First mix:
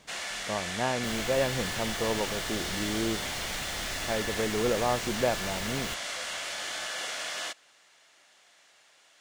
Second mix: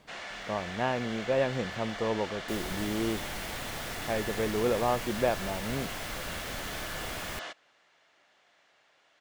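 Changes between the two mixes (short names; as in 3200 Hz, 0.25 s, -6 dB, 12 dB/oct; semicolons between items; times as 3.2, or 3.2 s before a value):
first sound: add tape spacing loss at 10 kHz 21 dB; second sound: entry +1.45 s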